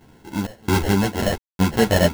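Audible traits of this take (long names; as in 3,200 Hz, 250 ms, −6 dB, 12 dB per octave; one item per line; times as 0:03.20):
sample-and-hold tremolo 4.4 Hz, depth 100%
aliases and images of a low sample rate 1,200 Hz, jitter 0%
a shimmering, thickened sound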